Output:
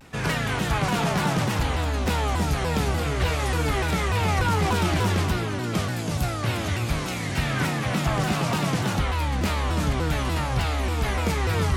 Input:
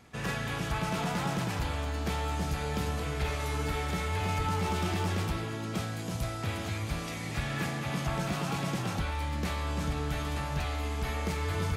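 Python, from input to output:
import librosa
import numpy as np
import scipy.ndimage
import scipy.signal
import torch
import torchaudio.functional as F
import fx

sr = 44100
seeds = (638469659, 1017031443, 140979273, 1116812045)

y = fx.vibrato_shape(x, sr, shape='saw_down', rate_hz=3.4, depth_cents=250.0)
y = y * librosa.db_to_amplitude(8.0)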